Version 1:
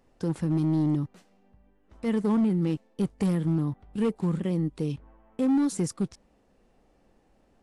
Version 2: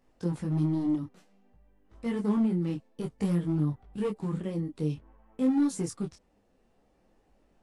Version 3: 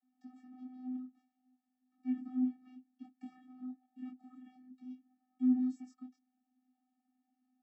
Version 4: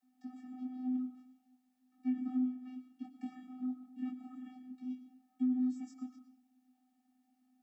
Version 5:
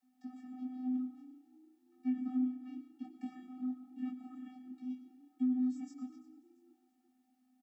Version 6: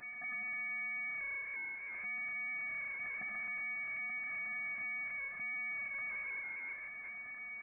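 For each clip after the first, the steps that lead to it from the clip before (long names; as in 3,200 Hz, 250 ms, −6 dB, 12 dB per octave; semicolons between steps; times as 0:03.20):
micro pitch shift up and down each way 19 cents
channel vocoder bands 32, square 254 Hz; level −9 dB
downward compressor 6 to 1, threshold −36 dBFS, peak gain reduction 11.5 dB; on a send at −9 dB: convolution reverb RT60 0.65 s, pre-delay 70 ms; on the sum: level +6 dB
echo with shifted repeats 340 ms, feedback 43%, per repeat +30 Hz, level −21 dB
power curve on the samples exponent 0.35; brickwall limiter −35 dBFS, peak gain reduction 9.5 dB; voice inversion scrambler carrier 2,500 Hz; level −3.5 dB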